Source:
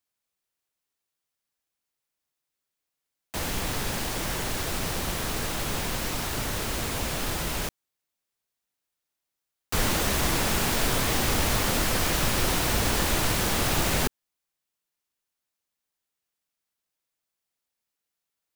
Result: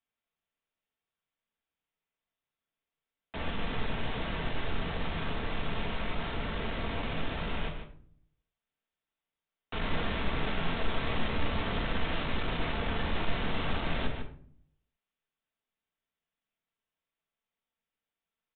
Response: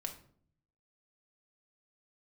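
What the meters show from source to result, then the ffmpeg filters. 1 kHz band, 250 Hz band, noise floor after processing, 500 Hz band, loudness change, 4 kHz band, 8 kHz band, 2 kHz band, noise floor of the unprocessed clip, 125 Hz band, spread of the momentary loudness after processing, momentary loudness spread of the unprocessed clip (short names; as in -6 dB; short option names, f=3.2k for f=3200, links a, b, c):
-6.0 dB, -5.0 dB, under -85 dBFS, -6.0 dB, -8.5 dB, -9.0 dB, under -40 dB, -6.0 dB, -85 dBFS, -5.5 dB, 5 LU, 5 LU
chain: -filter_complex "[0:a]aecho=1:1:149:0.237,aresample=8000,asoftclip=type=tanh:threshold=-28dB,aresample=44100[a];[1:a]atrim=start_sample=2205[b];[a][b]afir=irnorm=-1:irlink=0" -ar 16000 -c:a libmp3lame -b:a 56k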